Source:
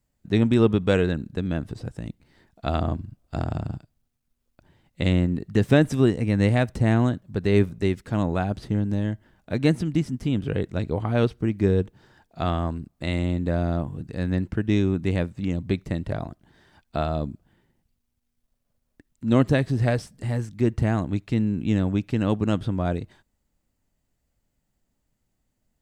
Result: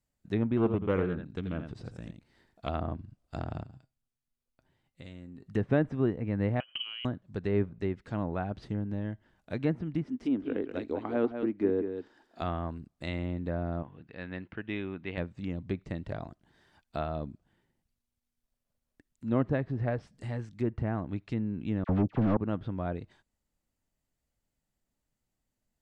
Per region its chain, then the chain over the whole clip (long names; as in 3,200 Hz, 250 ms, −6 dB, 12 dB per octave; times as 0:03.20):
0:00.57–0:02.69: single-tap delay 84 ms −8.5 dB + highs frequency-modulated by the lows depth 0.29 ms
0:03.63–0:05.46: downward compressor 2.5 to 1, threshold −33 dBFS + tuned comb filter 130 Hz, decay 0.17 s
0:06.60–0:07.05: voice inversion scrambler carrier 3,100 Hz + downward compressor 12 to 1, threshold −30 dBFS + transient designer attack +9 dB, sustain 0 dB
0:10.04–0:12.41: low shelf with overshoot 200 Hz −10 dB, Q 3 + single-tap delay 193 ms −8 dB
0:13.83–0:15.18: low-pass filter 3,000 Hz 24 dB per octave + spectral tilt +3 dB per octave
0:21.84–0:22.37: running median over 25 samples + leveller curve on the samples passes 3 + all-pass dispersion lows, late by 50 ms, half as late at 1,400 Hz
whole clip: treble cut that deepens with the level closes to 1,600 Hz, closed at −18.5 dBFS; low-shelf EQ 360 Hz −3.5 dB; level −6.5 dB